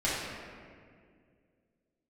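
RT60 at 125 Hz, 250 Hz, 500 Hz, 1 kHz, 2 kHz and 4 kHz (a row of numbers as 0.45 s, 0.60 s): 2.7 s, 2.7 s, 2.4 s, 1.8 s, 1.8 s, 1.2 s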